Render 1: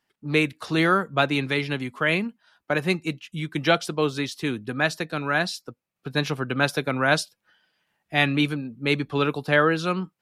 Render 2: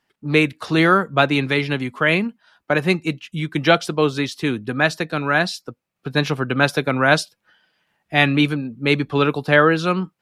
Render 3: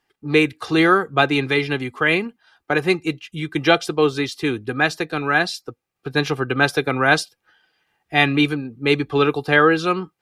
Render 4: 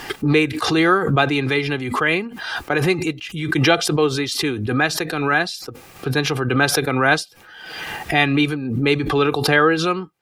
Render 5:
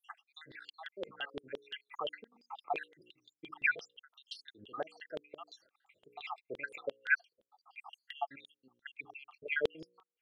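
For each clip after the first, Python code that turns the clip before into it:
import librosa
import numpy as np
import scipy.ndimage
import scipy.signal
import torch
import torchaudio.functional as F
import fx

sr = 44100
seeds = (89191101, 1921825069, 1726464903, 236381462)

y1 = fx.high_shelf(x, sr, hz=5500.0, db=-5.0)
y1 = y1 * 10.0 ** (5.5 / 20.0)
y2 = y1 + 0.5 * np.pad(y1, (int(2.5 * sr / 1000.0), 0))[:len(y1)]
y2 = y2 * 10.0 ** (-1.0 / 20.0)
y3 = fx.pre_swell(y2, sr, db_per_s=42.0)
y3 = y3 * 10.0 ** (-1.0 / 20.0)
y4 = fx.spec_dropout(y3, sr, seeds[0], share_pct=80)
y4 = fx.hum_notches(y4, sr, base_hz=60, count=9)
y4 = fx.filter_lfo_bandpass(y4, sr, shape='saw_down', hz=5.8, low_hz=460.0, high_hz=3400.0, q=5.8)
y4 = y4 * 10.0 ** (-3.5 / 20.0)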